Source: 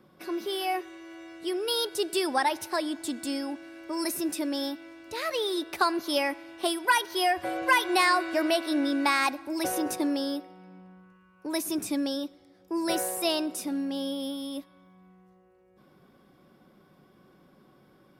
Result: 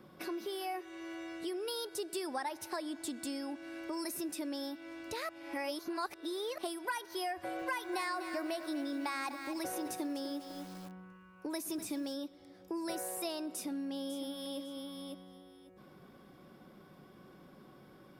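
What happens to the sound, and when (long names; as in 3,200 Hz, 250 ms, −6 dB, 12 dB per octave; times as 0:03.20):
0:05.29–0:06.58: reverse
0:07.34–0:12.15: feedback echo at a low word length 248 ms, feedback 35%, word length 7 bits, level −12 dB
0:13.52–0:14.59: delay throw 550 ms, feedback 15%, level −10 dB
whole clip: dynamic equaliser 3,100 Hz, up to −5 dB, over −42 dBFS, Q 1.9; downward compressor 3 to 1, threshold −42 dBFS; level +2 dB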